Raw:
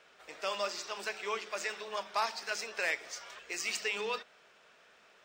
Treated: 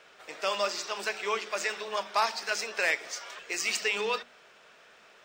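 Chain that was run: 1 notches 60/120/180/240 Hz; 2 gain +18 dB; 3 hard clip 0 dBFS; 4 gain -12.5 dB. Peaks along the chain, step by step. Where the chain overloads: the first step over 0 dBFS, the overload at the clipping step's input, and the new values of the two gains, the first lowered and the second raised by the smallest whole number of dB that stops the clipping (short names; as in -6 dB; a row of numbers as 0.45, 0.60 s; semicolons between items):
-19.5, -1.5, -1.5, -14.0 dBFS; no overload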